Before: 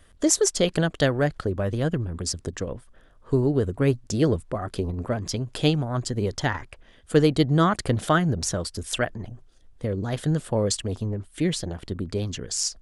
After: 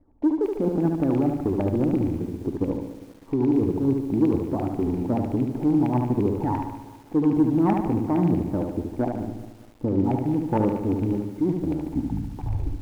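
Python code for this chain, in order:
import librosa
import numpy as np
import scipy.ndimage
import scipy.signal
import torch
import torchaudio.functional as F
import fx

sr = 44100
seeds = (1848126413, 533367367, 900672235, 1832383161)

p1 = fx.tape_stop_end(x, sr, length_s=1.23)
p2 = fx.formant_cascade(p1, sr, vowel='u')
p3 = fx.env_lowpass(p2, sr, base_hz=1900.0, full_db=-25.5)
p4 = fx.over_compress(p3, sr, threshold_db=-34.0, ratio=-0.5)
p5 = p3 + (p4 * 10.0 ** (1.5 / 20.0))
p6 = fx.filter_lfo_lowpass(p5, sr, shape='saw_down', hz=8.7, low_hz=790.0, high_hz=2400.0, q=5.3)
p7 = fx.leveller(p6, sr, passes=1)
p8 = fx.echo_feedback(p7, sr, ms=73, feedback_pct=50, wet_db=-4.5)
y = fx.echo_crushed(p8, sr, ms=201, feedback_pct=55, bits=7, wet_db=-15.0)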